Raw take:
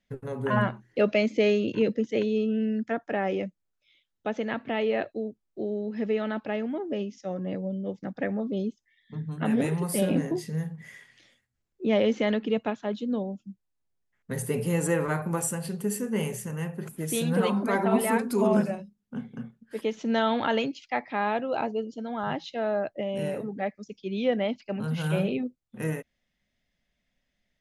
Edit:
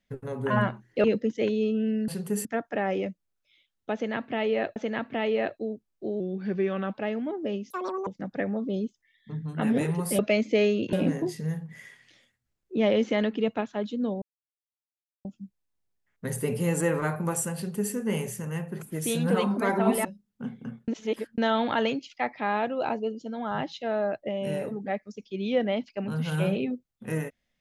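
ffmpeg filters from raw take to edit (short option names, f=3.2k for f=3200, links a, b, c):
-filter_complex "[0:a]asplit=15[a][b][c][d][e][f][g][h][i][j][k][l][m][n][o];[a]atrim=end=1.042[p];[b]atrim=start=1.778:end=2.822[q];[c]atrim=start=15.618:end=15.992[r];[d]atrim=start=2.818:end=5.132[s];[e]atrim=start=4.308:end=5.754[t];[f]atrim=start=5.75:end=6.41,asetpts=PTS-STARTPTS,asetrate=39249,aresample=44100,atrim=end_sample=32703,asetpts=PTS-STARTPTS[u];[g]atrim=start=6.406:end=7.174[v];[h]atrim=start=7.17:end=7.9,asetpts=PTS-STARTPTS,asetrate=87759,aresample=44100,atrim=end_sample=16177,asetpts=PTS-STARTPTS[w];[i]atrim=start=7.896:end=10.022[x];[j]atrim=start=1.038:end=1.782[y];[k]atrim=start=10.018:end=13.31,asetpts=PTS-STARTPTS,afade=t=out:st=3.288:d=0.004:c=hsin,apad=pad_dur=1.03[z];[l]atrim=start=13.31:end=18.112,asetpts=PTS-STARTPTS,afade=t=in:d=0.004:c=hsin[aa];[m]atrim=start=18.768:end=19.602[ab];[n]atrim=start=19.598:end=20.102,asetpts=PTS-STARTPTS,areverse[ac];[o]atrim=start=20.098[ad];[p][q]acrossfade=d=0.004:c1=hsin:c2=hsin[ae];[ae][r]acrossfade=d=0.004:c1=hsin:c2=hsin[af];[af][s]acrossfade=d=0.004:c1=hsin:c2=hsin[ag];[ag][t]acrossfade=d=0.004:c1=hsin:c2=hsin[ah];[ah][u]acrossfade=d=0.004:c1=hsin:c2=hsin[ai];[ai][v]acrossfade=d=0.004:c1=hsin:c2=hsin[aj];[aj][w]acrossfade=d=0.004:c1=hsin:c2=hsin[ak];[ak][x]acrossfade=d=0.004:c1=hsin:c2=hsin[al];[al][y]acrossfade=d=0.004:c1=hsin:c2=hsin[am];[z][aa]concat=n=2:v=0:a=1[an];[am][an]acrossfade=d=0.004:c1=hsin:c2=hsin[ao];[ao][ab]acrossfade=d=0.004:c1=hsin:c2=hsin[ap];[ap][ac]acrossfade=d=0.004:c1=hsin:c2=hsin[aq];[aq][ad]acrossfade=d=0.004:c1=hsin:c2=hsin"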